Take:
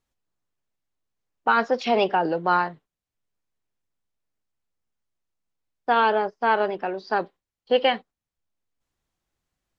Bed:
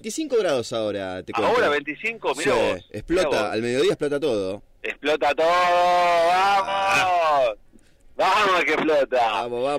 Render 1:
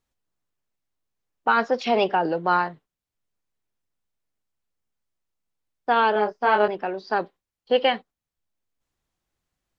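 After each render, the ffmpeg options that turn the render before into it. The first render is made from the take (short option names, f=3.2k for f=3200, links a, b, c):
-filter_complex "[0:a]asettb=1/sr,asplit=3[a][b][c];[a]atrim=end=6.134[d];[b]atrim=start=6.13:end=6.68,asetpts=PTS-STARTPTS,afade=t=in:d=0.004:c=qsin,afade=t=out:st=0.546:d=0.004:c=qsin,asplit=2[e][f];[f]adelay=24,volume=-3.5dB[g];[e][g]amix=inputs=2:normalize=0,atrim=end_sample=24255[h];[c]atrim=start=6.676[i];[d][h]acrossfade=d=0.004:c1=hsin:c2=qsin[j];[j][i]acrossfade=d=0.004:c1=qsin:c2=hsin"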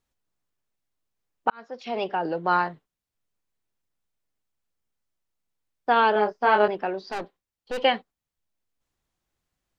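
-filter_complex "[0:a]asettb=1/sr,asplit=3[a][b][c];[a]atrim=end=7.114[d];[b]atrim=start=7.11:end=7.84,asetpts=PTS-STARTPTS,afade=t=in:d=0.004:c=qsin,afade=t=out:st=0.726:d=0.004:c=qsin,aeval=exprs='(tanh(22.4*val(0)+0.5)-tanh(0.5))/22.4':c=same[e];[c]atrim=start=7.836[f];[d][e]acrossfade=d=0.004:c1=hsin:c2=qsin[g];[g][f]acrossfade=d=0.004:c1=qsin:c2=hsin,asplit=2[h][i];[h]atrim=end=1.5,asetpts=PTS-STARTPTS,afade=t=out:st=1.496:d=0.004:c=hsin[j];[i]atrim=start=1.5,asetpts=PTS-STARTPTS,afade=t=in:d=1.2[k];[j][k]concat=n=2:v=0:a=1"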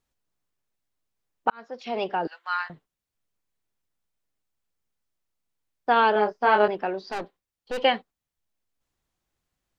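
-filter_complex "[0:a]asettb=1/sr,asplit=3[a][b][c];[a]atrim=end=2.274[d];[b]atrim=start=2.27:end=2.7,asetpts=PTS-STARTPTS,afade=t=in:d=0.004:c=qsin,afade=t=out:st=0.426:d=0.004:c=qsin,highpass=f=1.3k:w=0.5412,highpass=f=1.3k:w=1.3066[e];[c]atrim=start=2.696[f];[d][e]acrossfade=d=0.004:c1=hsin:c2=qsin[g];[g][f]acrossfade=d=0.004:c1=qsin:c2=hsin"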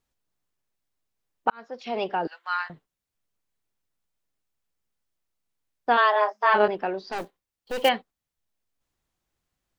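-filter_complex "[0:a]asplit=3[a][b][c];[a]afade=t=out:st=5.96:d=0.02[d];[b]afreqshift=210,afade=t=in:st=5.96:d=0.02,afade=t=out:st=6.53:d=0.02[e];[c]afade=t=in:st=6.53:d=0.02[f];[d][e][f]amix=inputs=3:normalize=0,asettb=1/sr,asplit=3[g][h][i];[g]atrim=end=7.184[j];[h]atrim=start=7.18:end=7.89,asetpts=PTS-STARTPTS,afade=t=in:d=0.004:c=qsin,afade=t=out:st=0.706:d=0.004:c=qsin,acrusher=bits=4:mode=log:mix=0:aa=0.000001[k];[i]atrim=start=7.886[l];[j][k]acrossfade=d=0.004:c1=hsin:c2=qsin[m];[m][l]acrossfade=d=0.004:c1=qsin:c2=hsin"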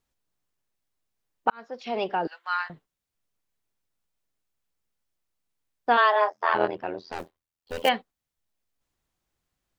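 -filter_complex "[0:a]asplit=3[a][b][c];[a]afade=t=out:st=6.28:d=0.02[d];[b]tremolo=f=83:d=0.947,afade=t=in:st=6.28:d=0.02,afade=t=out:st=7.86:d=0.02[e];[c]afade=t=in:st=7.86:d=0.02[f];[d][e][f]amix=inputs=3:normalize=0"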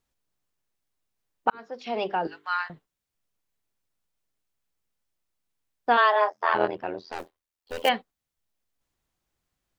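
-filter_complex "[0:a]asplit=3[a][b][c];[a]afade=t=out:st=1.53:d=0.02[d];[b]bandreject=f=50:t=h:w=6,bandreject=f=100:t=h:w=6,bandreject=f=150:t=h:w=6,bandreject=f=200:t=h:w=6,bandreject=f=250:t=h:w=6,bandreject=f=300:t=h:w=6,bandreject=f=350:t=h:w=6,bandreject=f=400:t=h:w=6,bandreject=f=450:t=h:w=6,afade=t=in:st=1.53:d=0.02,afade=t=out:st=2.68:d=0.02[e];[c]afade=t=in:st=2.68:d=0.02[f];[d][e][f]amix=inputs=3:normalize=0,asettb=1/sr,asplit=3[g][h][i];[g]atrim=end=7.054[j];[h]atrim=start=7.05:end=7.9,asetpts=PTS-STARTPTS,afade=t=in:d=0.004:c=qsin,afade=t=out:st=0.846:d=0.004:c=qsin,equalizer=f=130:t=o:w=0.98:g=-14[k];[i]atrim=start=7.896[l];[j][k]acrossfade=d=0.004:c1=hsin:c2=qsin[m];[m][l]acrossfade=d=0.004:c1=qsin:c2=hsin"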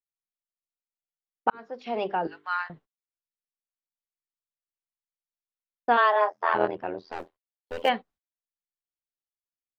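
-af "lowpass=f=2.4k:p=1,agate=range=-31dB:threshold=-53dB:ratio=16:detection=peak"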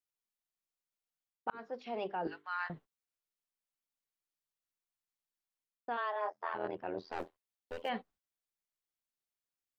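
-af "alimiter=limit=-14dB:level=0:latency=1:release=369,areverse,acompressor=threshold=-36dB:ratio=4,areverse"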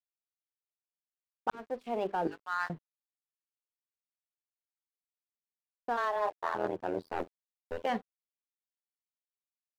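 -filter_complex "[0:a]asplit=2[a][b];[b]adynamicsmooth=sensitivity=6.5:basefreq=580,volume=0.5dB[c];[a][c]amix=inputs=2:normalize=0,aeval=exprs='sgn(val(0))*max(abs(val(0))-0.00168,0)':c=same"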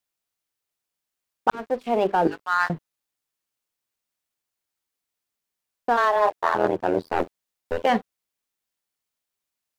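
-af "volume=11.5dB"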